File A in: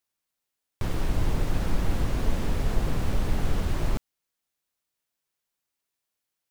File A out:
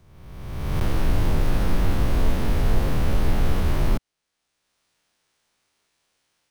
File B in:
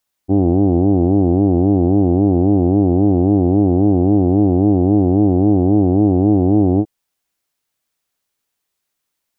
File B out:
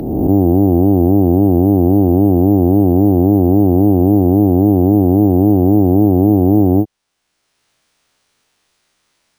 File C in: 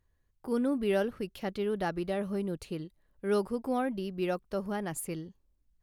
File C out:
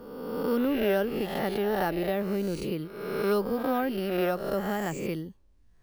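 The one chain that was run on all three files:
peak hold with a rise ahead of every peak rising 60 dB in 1.05 s
bad sample-rate conversion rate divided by 3×, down filtered, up hold
multiband upward and downward compressor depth 40%
level +2 dB

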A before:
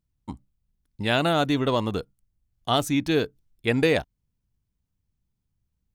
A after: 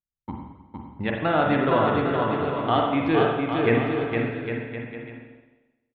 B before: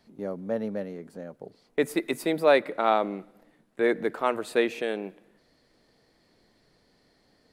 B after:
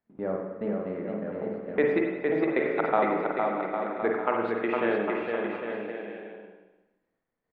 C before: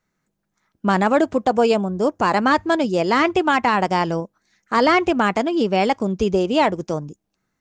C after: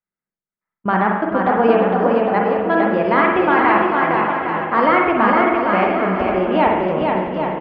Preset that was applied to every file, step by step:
noise gate −51 dBFS, range −24 dB
Bessel low-pass filter 1,600 Hz, order 4
tilt shelving filter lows −4.5 dB, about 860 Hz
in parallel at −2 dB: downward compressor, threshold −33 dBFS
on the sum: gate pattern "xxx..x.xx.xxxx" 123 BPM −24 dB
on a send: bouncing-ball delay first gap 460 ms, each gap 0.75×, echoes 5
on the sum: spring reverb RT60 1.1 s, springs 43/52 ms, chirp 55 ms, DRR 0.5 dB

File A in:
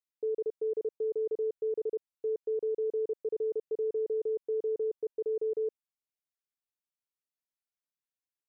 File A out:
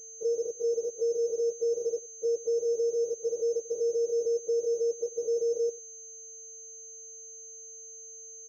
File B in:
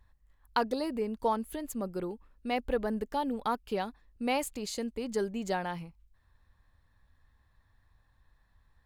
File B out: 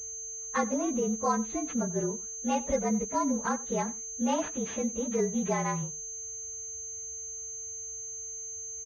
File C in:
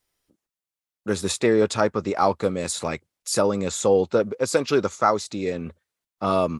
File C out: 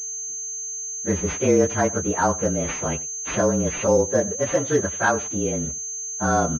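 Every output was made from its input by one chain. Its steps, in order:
partials spread apart or drawn together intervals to 111%
high-pass filter 52 Hz 24 dB per octave
low-shelf EQ 160 Hz +6 dB
in parallel at −1 dB: downward compressor, threshold −32 dBFS
on the sum: steady tone 450 Hz −55 dBFS
on a send: single-tap delay 92 ms −20 dB
on the sum: switching amplifier with a slow clock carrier 6,300 Hz

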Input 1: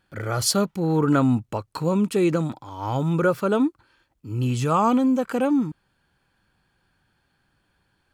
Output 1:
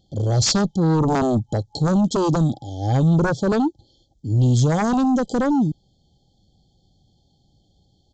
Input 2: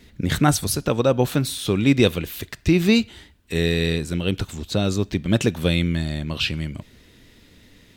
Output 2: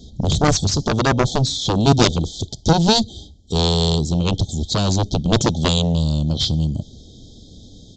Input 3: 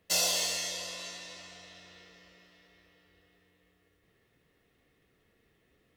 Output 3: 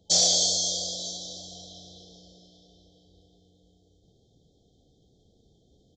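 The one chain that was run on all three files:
brick-wall band-stop 850–3,100 Hz
harmonic generator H 7 −8 dB, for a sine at −3.5 dBFS
in parallel at −7 dB: hard clipping −16.5 dBFS
on the sum: bass and treble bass +6 dB, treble +6 dB
downsampling to 16,000 Hz
level −3 dB

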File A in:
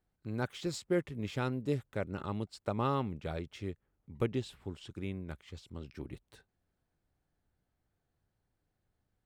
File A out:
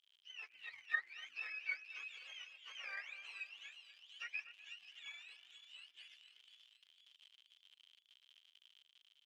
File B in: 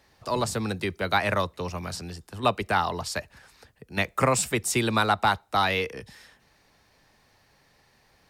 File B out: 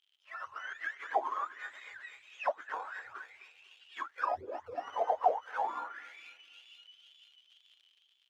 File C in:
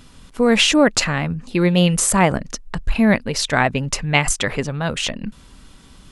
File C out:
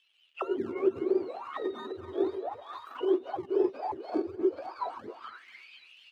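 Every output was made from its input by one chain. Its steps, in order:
frequency axis turned over on the octave scale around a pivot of 810 Hz
in parallel at −3 dB: sample-and-hold swept by an LFO 31×, swing 100% 1.5 Hz
on the sum: parametric band 190 Hz −13 dB 2.8 octaves
on a send: echo with a time of its own for lows and highs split 2,800 Hz, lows 248 ms, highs 487 ms, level −10 dB
on the sum: surface crackle 130 per second −37 dBFS
envelope filter 380–3,200 Hz, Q 12, down, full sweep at −18 dBFS
automatic gain control gain up to 7 dB
low shelf with overshoot 240 Hz −8.5 dB, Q 1.5
level −1.5 dB

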